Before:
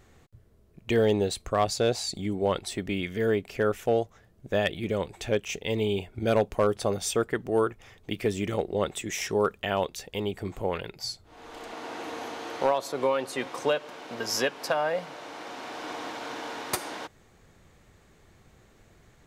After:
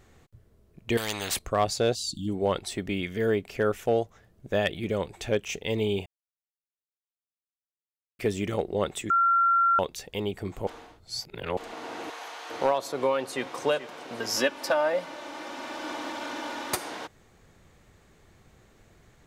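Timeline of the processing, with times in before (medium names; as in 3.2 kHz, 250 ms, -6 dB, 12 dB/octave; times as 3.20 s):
0.97–1.39 s: spectrum-flattening compressor 4:1
1.94–2.28 s: spectral selection erased 340–2700 Hz
6.06–8.19 s: mute
9.10–9.79 s: bleep 1.37 kHz -18.5 dBFS
10.67–11.57 s: reverse
12.10–12.50 s: high-pass 810 Hz
13.19–13.60 s: echo throw 430 ms, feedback 60%, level -13.5 dB
14.36–16.74 s: comb 3.4 ms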